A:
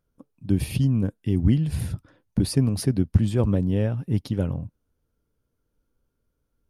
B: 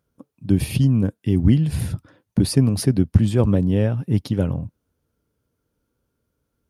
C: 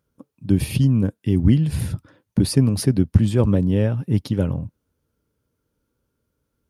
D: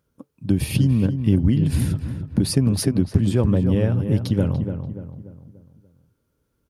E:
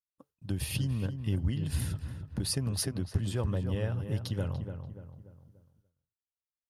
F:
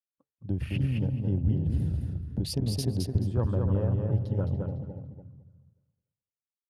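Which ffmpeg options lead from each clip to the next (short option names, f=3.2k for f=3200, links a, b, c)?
-af "highpass=68,volume=4.5dB"
-af "bandreject=f=710:w=12"
-filter_complex "[0:a]acompressor=threshold=-17dB:ratio=3,asplit=2[a][b];[b]adelay=291,lowpass=f=1.7k:p=1,volume=-7.5dB,asplit=2[c][d];[d]adelay=291,lowpass=f=1.7k:p=1,volume=0.45,asplit=2[e][f];[f]adelay=291,lowpass=f=1.7k:p=1,volume=0.45,asplit=2[g][h];[h]adelay=291,lowpass=f=1.7k:p=1,volume=0.45,asplit=2[i][j];[j]adelay=291,lowpass=f=1.7k:p=1,volume=0.45[k];[c][e][g][i][k]amix=inputs=5:normalize=0[l];[a][l]amix=inputs=2:normalize=0,volume=2dB"
-af "agate=range=-33dB:threshold=-46dB:ratio=3:detection=peak,equalizer=f=240:t=o:w=2.2:g=-12,bandreject=f=2.3k:w=9.7,volume=-5.5dB"
-filter_complex "[0:a]afwtdn=0.00794,highshelf=f=5.7k:g=-12,asplit=2[a][b];[b]aecho=0:1:215|430|645:0.631|0.107|0.0182[c];[a][c]amix=inputs=2:normalize=0,volume=3dB"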